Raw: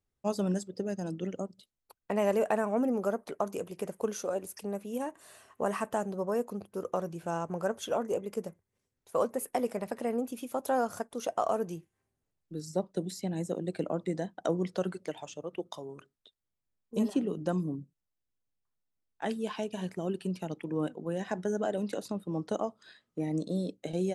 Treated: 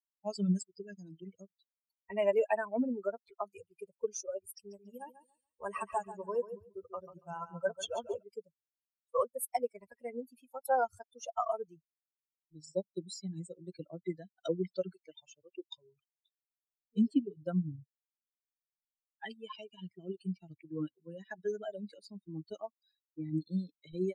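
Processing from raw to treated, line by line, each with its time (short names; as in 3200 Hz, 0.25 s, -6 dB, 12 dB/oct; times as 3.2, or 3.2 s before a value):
4.52–8.23 feedback echo 0.141 s, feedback 54%, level -4.5 dB
whole clip: per-bin expansion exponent 3; dynamic EQ 340 Hz, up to -4 dB, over -58 dBFS, Q 5.9; gain +4.5 dB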